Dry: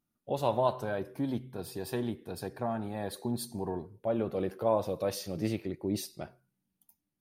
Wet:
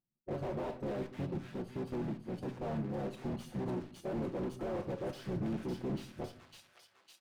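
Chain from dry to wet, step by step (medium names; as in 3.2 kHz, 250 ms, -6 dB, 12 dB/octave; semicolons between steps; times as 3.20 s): local Wiener filter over 25 samples; reverb removal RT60 0.52 s; gate -57 dBFS, range -10 dB; bass shelf 210 Hz -3.5 dB; comb 5.4 ms, depth 75%; peak limiter -24.5 dBFS, peak gain reduction 10 dB; harmony voices -7 st -2 dB, -4 st -11 dB; overload inside the chain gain 32.5 dB; Chebyshev shaper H 6 -23 dB, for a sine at -32 dBFS; feedback echo behind a high-pass 554 ms, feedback 49%, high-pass 1.8 kHz, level -7 dB; reverberation RT60 0.60 s, pre-delay 6 ms, DRR 9.5 dB; slew-rate limiter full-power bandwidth 11 Hz; trim -1 dB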